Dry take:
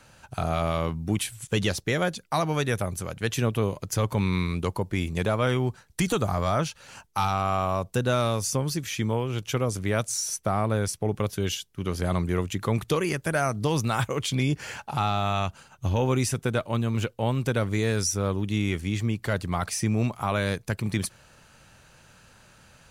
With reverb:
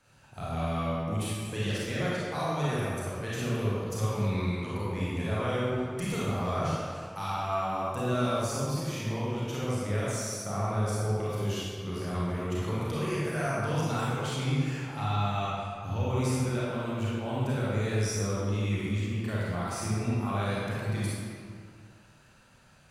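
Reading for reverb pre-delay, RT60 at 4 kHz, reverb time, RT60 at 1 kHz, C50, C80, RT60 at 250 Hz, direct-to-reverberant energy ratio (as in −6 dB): 29 ms, 1.3 s, 2.2 s, 2.2 s, −5.0 dB, −2.0 dB, 2.1 s, −8.5 dB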